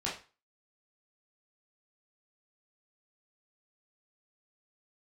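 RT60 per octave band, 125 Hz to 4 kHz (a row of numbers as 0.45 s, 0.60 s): 0.35 s, 0.30 s, 0.30 s, 0.35 s, 0.35 s, 0.30 s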